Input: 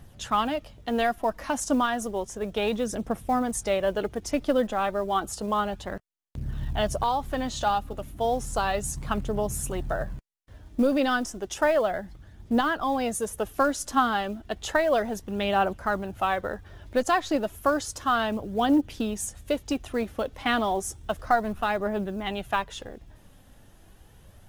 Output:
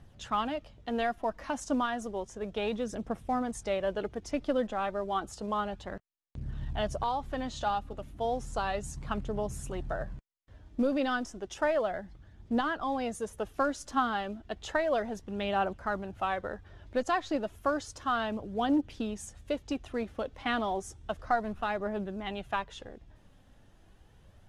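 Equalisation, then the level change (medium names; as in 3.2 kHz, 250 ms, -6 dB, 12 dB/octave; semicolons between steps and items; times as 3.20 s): distance through air 60 m; -5.5 dB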